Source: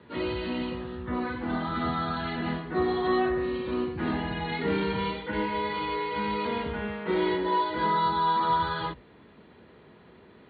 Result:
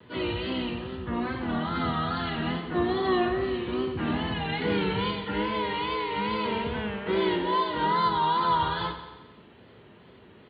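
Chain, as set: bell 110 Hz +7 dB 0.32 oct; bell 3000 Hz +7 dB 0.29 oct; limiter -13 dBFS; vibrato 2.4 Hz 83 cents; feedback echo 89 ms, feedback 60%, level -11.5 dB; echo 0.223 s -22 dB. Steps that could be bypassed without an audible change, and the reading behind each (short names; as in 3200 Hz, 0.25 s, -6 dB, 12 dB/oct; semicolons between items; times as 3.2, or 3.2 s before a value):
limiter -13 dBFS: input peak -15.0 dBFS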